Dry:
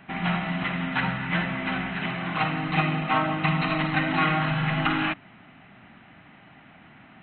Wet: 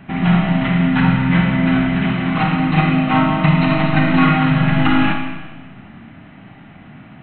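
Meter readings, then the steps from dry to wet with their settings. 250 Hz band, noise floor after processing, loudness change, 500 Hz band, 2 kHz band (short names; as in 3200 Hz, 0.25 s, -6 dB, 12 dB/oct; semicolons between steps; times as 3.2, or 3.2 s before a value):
+14.0 dB, -41 dBFS, +10.0 dB, +8.5 dB, +5.5 dB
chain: low shelf 360 Hz +11.5 dB; Schroeder reverb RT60 1.3 s, combs from 27 ms, DRR 2.5 dB; gain +3 dB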